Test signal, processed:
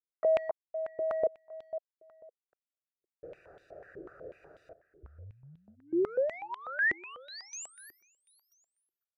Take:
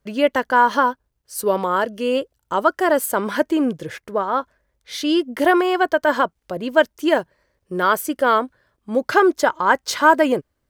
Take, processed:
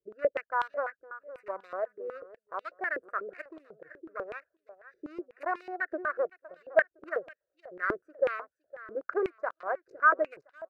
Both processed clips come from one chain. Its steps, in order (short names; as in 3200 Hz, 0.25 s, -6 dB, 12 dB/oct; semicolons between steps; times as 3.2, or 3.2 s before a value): Wiener smoothing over 41 samples; fixed phaser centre 890 Hz, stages 6; feedback echo 0.511 s, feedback 27%, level -17.5 dB; dynamic EQ 470 Hz, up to -3 dB, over -33 dBFS, Q 1.5; stepped band-pass 8.1 Hz 360–3400 Hz